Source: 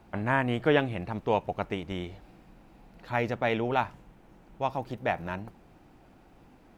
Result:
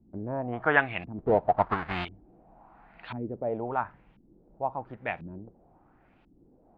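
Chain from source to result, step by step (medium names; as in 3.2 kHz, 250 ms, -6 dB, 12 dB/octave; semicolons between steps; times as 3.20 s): 1.18–2.05 s: square wave that keeps the level; 0.53–3.17 s: time-frequency box 610–5000 Hz +9 dB; LFO low-pass saw up 0.96 Hz 230–3200 Hz; trim -6.5 dB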